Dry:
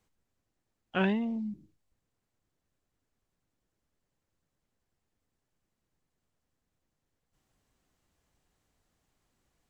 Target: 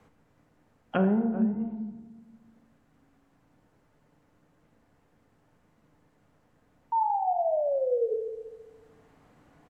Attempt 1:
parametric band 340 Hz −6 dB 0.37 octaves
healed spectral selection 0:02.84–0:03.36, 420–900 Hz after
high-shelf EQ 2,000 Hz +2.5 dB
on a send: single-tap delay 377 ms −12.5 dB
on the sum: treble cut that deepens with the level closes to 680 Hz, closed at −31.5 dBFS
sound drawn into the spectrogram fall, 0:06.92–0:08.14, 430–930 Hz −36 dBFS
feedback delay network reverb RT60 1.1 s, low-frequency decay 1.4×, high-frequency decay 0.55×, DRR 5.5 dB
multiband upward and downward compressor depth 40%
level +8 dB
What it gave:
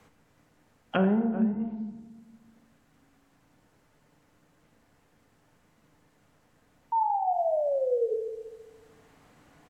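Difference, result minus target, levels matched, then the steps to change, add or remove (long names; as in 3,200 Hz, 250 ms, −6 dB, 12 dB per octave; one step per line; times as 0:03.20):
4,000 Hz band +5.5 dB
change: high-shelf EQ 2,000 Hz −6.5 dB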